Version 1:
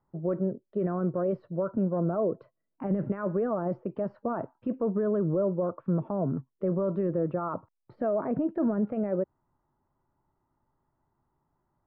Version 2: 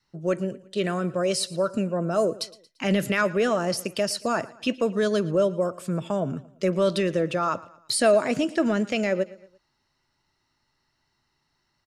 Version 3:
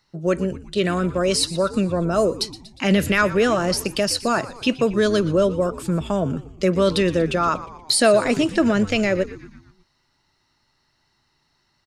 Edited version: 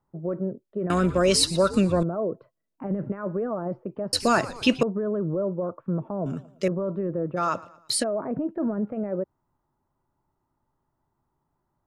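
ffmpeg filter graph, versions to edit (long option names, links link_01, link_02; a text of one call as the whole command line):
ffmpeg -i take0.wav -i take1.wav -i take2.wav -filter_complex "[2:a]asplit=2[link_01][link_02];[1:a]asplit=2[link_03][link_04];[0:a]asplit=5[link_05][link_06][link_07][link_08][link_09];[link_05]atrim=end=0.902[link_10];[link_01]atrim=start=0.898:end=2.032[link_11];[link_06]atrim=start=2.028:end=4.132[link_12];[link_02]atrim=start=4.128:end=4.832[link_13];[link_07]atrim=start=4.828:end=6.262[link_14];[link_03]atrim=start=6.258:end=6.682[link_15];[link_08]atrim=start=6.678:end=7.38[link_16];[link_04]atrim=start=7.36:end=8.04[link_17];[link_09]atrim=start=8.02[link_18];[link_10][link_11]acrossfade=duration=0.004:curve1=hsin:curve2=hsin[link_19];[link_19][link_12]acrossfade=duration=0.004:curve1=hsin:curve2=hsin[link_20];[link_20][link_13]acrossfade=duration=0.004:curve1=hsin:curve2=hsin[link_21];[link_21][link_14]acrossfade=duration=0.004:curve1=hsin:curve2=hsin[link_22];[link_22][link_15]acrossfade=duration=0.004:curve1=hsin:curve2=hsin[link_23];[link_23][link_16]acrossfade=duration=0.004:curve1=hsin:curve2=hsin[link_24];[link_24][link_17]acrossfade=duration=0.02:curve1=tri:curve2=tri[link_25];[link_25][link_18]acrossfade=duration=0.02:curve1=tri:curve2=tri" out.wav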